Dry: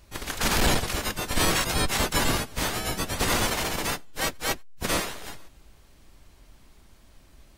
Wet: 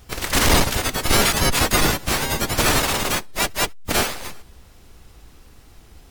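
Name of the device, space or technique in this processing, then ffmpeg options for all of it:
nightcore: -af "asetrate=54684,aresample=44100,volume=6.5dB"

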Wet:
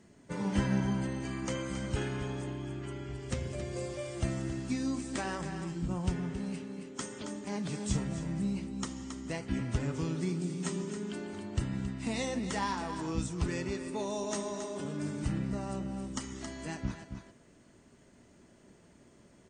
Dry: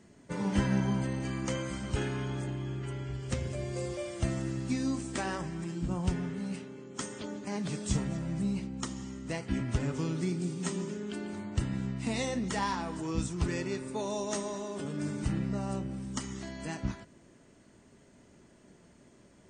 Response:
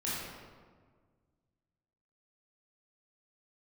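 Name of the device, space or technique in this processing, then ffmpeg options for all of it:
ducked delay: -filter_complex "[0:a]asplit=3[a][b][c];[b]adelay=272,volume=-7dB[d];[c]apad=whole_len=871868[e];[d][e]sidechaincompress=threshold=-33dB:ratio=8:attack=11:release=483[f];[a][f]amix=inputs=2:normalize=0,volume=-1.5dB"

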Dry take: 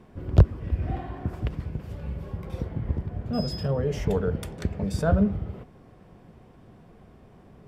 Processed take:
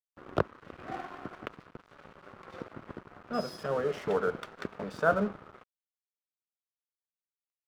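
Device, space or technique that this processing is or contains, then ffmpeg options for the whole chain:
pocket radio on a weak battery: -af "highpass=330,lowpass=3.9k,aeval=exprs='sgn(val(0))*max(abs(val(0))-0.00531,0)':c=same,equalizer=f=1.3k:t=o:w=0.59:g=9.5"

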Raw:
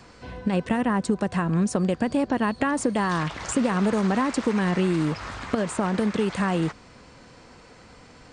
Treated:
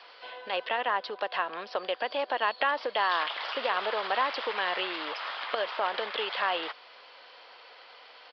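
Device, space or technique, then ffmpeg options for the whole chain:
musical greeting card: -af "aresample=11025,aresample=44100,highpass=f=550:w=0.5412,highpass=f=550:w=1.3066,equalizer=f=3.2k:t=o:w=0.43:g=9"

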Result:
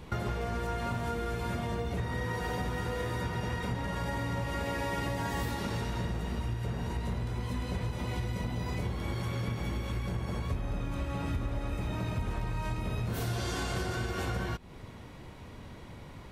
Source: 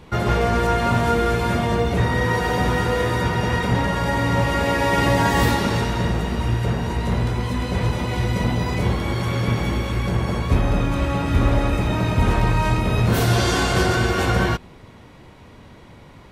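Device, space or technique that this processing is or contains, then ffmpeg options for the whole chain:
ASMR close-microphone chain: -af "lowshelf=f=120:g=4.5,acompressor=threshold=-27dB:ratio=6,highshelf=f=7.6k:g=4.5,volume=-4dB"

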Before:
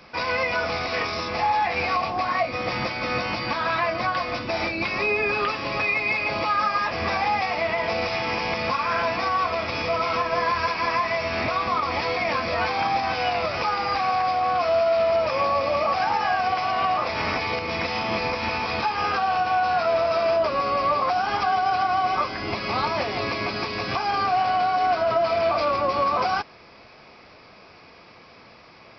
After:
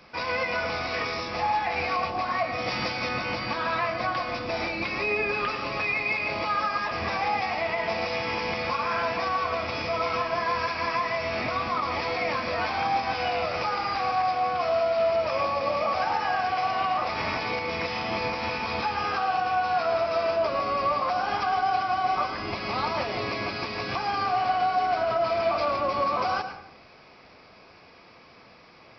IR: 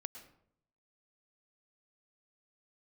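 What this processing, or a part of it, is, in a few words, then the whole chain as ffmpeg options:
bathroom: -filter_complex "[1:a]atrim=start_sample=2205[a];[0:a][a]afir=irnorm=-1:irlink=0,asettb=1/sr,asplit=3[b][c][d];[b]atrim=end=2.584[e];[c]atrim=start=2.58:end=3.09,asetpts=PTS-STARTPTS,afade=t=in:d=0.004:c=qsin,afade=t=out:st=0.506:d=0.004:c=qsin,highshelf=f=3.4k:g=7.5[f];[d]atrim=start=3.086[g];[e][f]acrossfade=d=0.004:c1=hsin:c2=qsin[h];[h][g]acrossfade=d=0.004:c1=qsin:c2=hsin"

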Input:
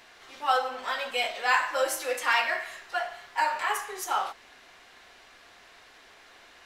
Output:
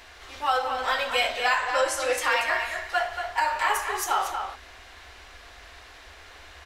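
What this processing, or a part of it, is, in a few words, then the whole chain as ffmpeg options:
car stereo with a boomy subwoofer: -filter_complex "[0:a]asettb=1/sr,asplit=3[a][b][c];[a]atrim=end=1.574[d];[b]atrim=start=1.57:end=2.13,asetpts=PTS-STARTPTS,afade=t=in:d=0.004:c=qsin,afade=t=out:st=0.556:d=0.004:c=qsin,lowpass=f=10k:w=0.5412,lowpass=f=10k:w=1.3066[e];[c]atrim=start=2.126[f];[d][e]acrossfade=d=0.004:c1=hsin:c2=qsin[g];[g][f]acrossfade=d=0.004:c1=qsin:c2=hsin,lowshelf=f=100:t=q:w=3:g=11.5,alimiter=limit=-18dB:level=0:latency=1:release=301,asplit=2[h][i];[i]adelay=233.2,volume=-6dB,highshelf=f=4k:g=-5.25[j];[h][j]amix=inputs=2:normalize=0,volume=5dB"

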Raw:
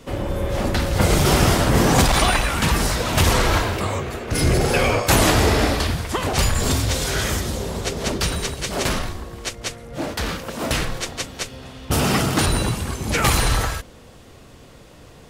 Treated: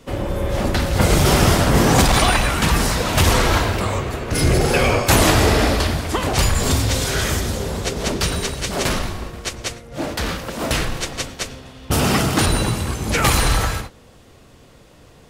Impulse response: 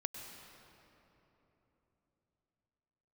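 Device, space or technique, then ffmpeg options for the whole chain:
keyed gated reverb: -filter_complex "[0:a]asplit=3[a][b][c];[1:a]atrim=start_sample=2205[d];[b][d]afir=irnorm=-1:irlink=0[e];[c]apad=whole_len=674521[f];[e][f]sidechaingate=range=-33dB:threshold=-34dB:ratio=16:detection=peak,volume=-2.5dB[g];[a][g]amix=inputs=2:normalize=0,volume=-2.5dB"

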